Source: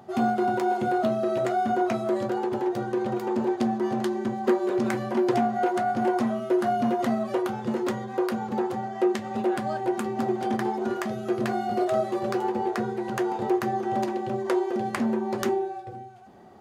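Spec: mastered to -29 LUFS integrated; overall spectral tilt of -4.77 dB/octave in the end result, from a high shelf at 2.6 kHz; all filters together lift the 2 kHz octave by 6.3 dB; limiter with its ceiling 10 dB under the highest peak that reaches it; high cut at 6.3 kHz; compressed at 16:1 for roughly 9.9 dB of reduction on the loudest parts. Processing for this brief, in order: low-pass 6.3 kHz; peaking EQ 2 kHz +7.5 dB; treble shelf 2.6 kHz +3 dB; compression 16:1, threshold -28 dBFS; trim +4.5 dB; peak limiter -20 dBFS

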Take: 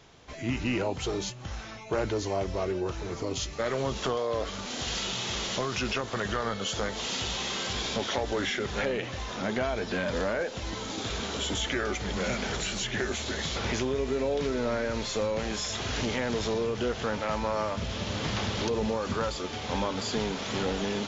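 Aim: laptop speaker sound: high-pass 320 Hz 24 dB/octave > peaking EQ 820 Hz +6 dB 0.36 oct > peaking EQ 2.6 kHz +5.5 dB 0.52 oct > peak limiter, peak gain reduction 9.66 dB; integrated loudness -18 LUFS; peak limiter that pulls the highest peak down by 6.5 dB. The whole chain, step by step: peak limiter -22 dBFS; high-pass 320 Hz 24 dB/octave; peaking EQ 820 Hz +6 dB 0.36 oct; peaking EQ 2.6 kHz +5.5 dB 0.52 oct; trim +18 dB; peak limiter -10 dBFS

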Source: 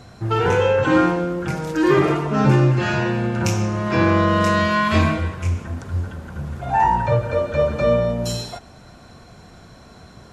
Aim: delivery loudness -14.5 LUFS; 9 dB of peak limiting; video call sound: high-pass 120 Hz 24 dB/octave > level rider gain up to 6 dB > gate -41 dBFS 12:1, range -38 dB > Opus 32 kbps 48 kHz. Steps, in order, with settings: peak limiter -13 dBFS; high-pass 120 Hz 24 dB/octave; level rider gain up to 6 dB; gate -41 dBFS 12:1, range -38 dB; trim +8.5 dB; Opus 32 kbps 48 kHz

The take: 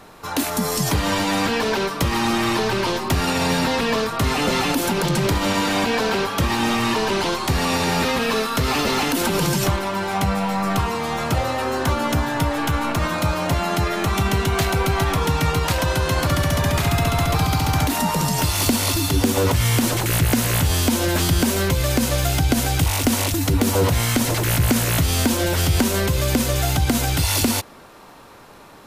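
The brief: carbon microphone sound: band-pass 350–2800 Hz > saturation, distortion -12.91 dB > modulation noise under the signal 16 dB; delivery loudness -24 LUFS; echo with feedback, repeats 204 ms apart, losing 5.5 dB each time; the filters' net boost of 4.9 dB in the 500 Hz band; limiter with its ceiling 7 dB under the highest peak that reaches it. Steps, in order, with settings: peaking EQ 500 Hz +7.5 dB; peak limiter -9.5 dBFS; band-pass 350–2800 Hz; feedback delay 204 ms, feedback 53%, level -5.5 dB; saturation -18 dBFS; modulation noise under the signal 16 dB; trim -0.5 dB

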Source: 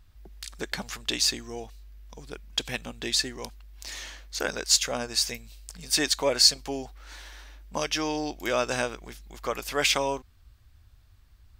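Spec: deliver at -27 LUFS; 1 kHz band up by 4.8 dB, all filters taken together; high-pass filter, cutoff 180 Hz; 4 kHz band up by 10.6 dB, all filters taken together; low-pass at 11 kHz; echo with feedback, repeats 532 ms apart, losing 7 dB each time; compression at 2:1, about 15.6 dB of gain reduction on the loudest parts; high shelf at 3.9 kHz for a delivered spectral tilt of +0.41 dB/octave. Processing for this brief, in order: high-pass 180 Hz; low-pass 11 kHz; peaking EQ 1 kHz +5 dB; treble shelf 3.9 kHz +9 dB; peaking EQ 4 kHz +6.5 dB; compression 2:1, threshold -33 dBFS; feedback delay 532 ms, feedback 45%, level -7 dB; trim +2.5 dB

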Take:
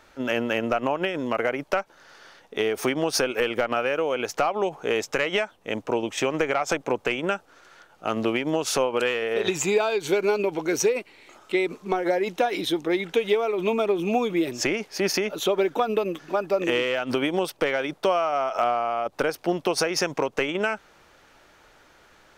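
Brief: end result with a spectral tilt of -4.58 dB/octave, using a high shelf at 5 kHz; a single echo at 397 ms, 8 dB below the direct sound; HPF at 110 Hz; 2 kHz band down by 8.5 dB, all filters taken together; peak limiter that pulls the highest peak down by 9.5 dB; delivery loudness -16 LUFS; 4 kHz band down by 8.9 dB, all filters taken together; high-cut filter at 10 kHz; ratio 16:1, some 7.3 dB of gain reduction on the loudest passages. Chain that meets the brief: high-pass 110 Hz; low-pass 10 kHz; peaking EQ 2 kHz -8.5 dB; peaking EQ 4 kHz -7 dB; treble shelf 5 kHz -4.5 dB; compression 16:1, threshold -25 dBFS; peak limiter -23.5 dBFS; delay 397 ms -8 dB; trim +17 dB

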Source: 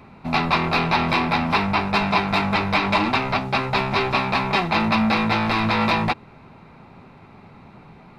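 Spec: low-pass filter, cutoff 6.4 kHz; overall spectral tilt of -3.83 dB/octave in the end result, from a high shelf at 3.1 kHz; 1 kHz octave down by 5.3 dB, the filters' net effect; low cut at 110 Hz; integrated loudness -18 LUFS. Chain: high-pass 110 Hz; low-pass 6.4 kHz; peaking EQ 1 kHz -6 dB; treble shelf 3.1 kHz -5 dB; trim +5.5 dB

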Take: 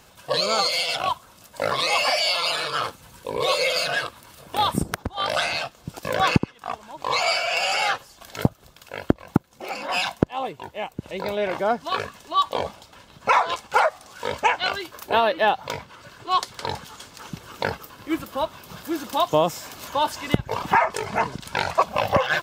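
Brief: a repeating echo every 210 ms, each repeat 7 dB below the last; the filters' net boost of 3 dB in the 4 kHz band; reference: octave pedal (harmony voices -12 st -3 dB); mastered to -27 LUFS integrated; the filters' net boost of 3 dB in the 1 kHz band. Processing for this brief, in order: peaking EQ 1 kHz +3.5 dB; peaking EQ 4 kHz +3.5 dB; feedback delay 210 ms, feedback 45%, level -7 dB; harmony voices -12 st -3 dB; trim -7.5 dB

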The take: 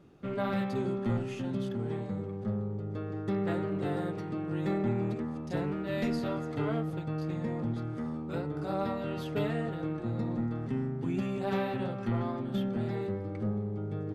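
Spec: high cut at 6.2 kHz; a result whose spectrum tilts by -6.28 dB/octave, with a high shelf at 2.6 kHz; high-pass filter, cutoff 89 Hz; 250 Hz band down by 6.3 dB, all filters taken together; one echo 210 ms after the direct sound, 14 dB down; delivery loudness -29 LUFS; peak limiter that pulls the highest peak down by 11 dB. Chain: high-pass 89 Hz; low-pass 6.2 kHz; peaking EQ 250 Hz -8.5 dB; treble shelf 2.6 kHz -7 dB; peak limiter -33 dBFS; delay 210 ms -14 dB; trim +12.5 dB

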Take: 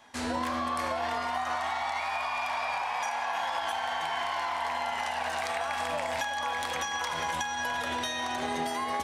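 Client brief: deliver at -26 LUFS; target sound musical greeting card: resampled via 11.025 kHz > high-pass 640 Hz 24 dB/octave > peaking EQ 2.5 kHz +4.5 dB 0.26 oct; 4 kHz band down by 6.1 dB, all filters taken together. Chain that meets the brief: peaking EQ 4 kHz -9 dB; resampled via 11.025 kHz; high-pass 640 Hz 24 dB/octave; peaking EQ 2.5 kHz +4.5 dB 0.26 oct; trim +6.5 dB

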